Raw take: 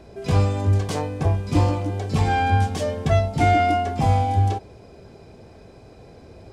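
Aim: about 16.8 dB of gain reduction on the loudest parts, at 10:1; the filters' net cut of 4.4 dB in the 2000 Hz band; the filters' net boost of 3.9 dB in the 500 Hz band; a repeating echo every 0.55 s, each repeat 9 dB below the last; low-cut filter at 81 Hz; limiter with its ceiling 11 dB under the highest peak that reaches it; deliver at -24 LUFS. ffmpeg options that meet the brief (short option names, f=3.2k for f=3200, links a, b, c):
-af "highpass=81,equalizer=f=500:t=o:g=6,equalizer=f=2k:t=o:g=-6,acompressor=threshold=-30dB:ratio=10,alimiter=level_in=7.5dB:limit=-24dB:level=0:latency=1,volume=-7.5dB,aecho=1:1:550|1100|1650|2200:0.355|0.124|0.0435|0.0152,volume=15.5dB"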